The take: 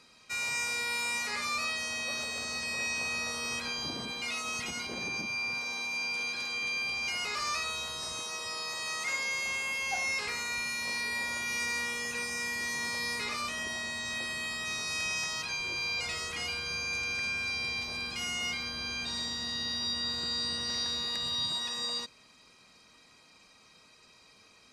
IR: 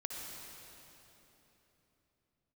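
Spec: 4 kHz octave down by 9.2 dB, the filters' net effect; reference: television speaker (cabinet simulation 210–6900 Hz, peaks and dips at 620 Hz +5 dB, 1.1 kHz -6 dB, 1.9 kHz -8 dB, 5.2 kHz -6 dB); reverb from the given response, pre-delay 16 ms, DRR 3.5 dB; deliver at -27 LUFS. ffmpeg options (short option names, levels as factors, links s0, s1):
-filter_complex "[0:a]equalizer=f=4000:t=o:g=-8.5,asplit=2[s0][s1];[1:a]atrim=start_sample=2205,adelay=16[s2];[s1][s2]afir=irnorm=-1:irlink=0,volume=0.668[s3];[s0][s3]amix=inputs=2:normalize=0,highpass=f=210:w=0.5412,highpass=f=210:w=1.3066,equalizer=f=620:t=q:w=4:g=5,equalizer=f=1100:t=q:w=4:g=-6,equalizer=f=1900:t=q:w=4:g=-8,equalizer=f=5200:t=q:w=4:g=-6,lowpass=f=6900:w=0.5412,lowpass=f=6900:w=1.3066,volume=2.82"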